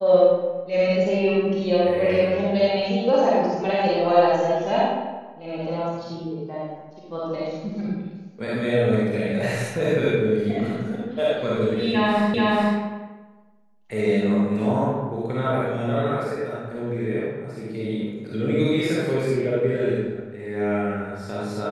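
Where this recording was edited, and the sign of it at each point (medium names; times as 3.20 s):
12.34 s: repeat of the last 0.43 s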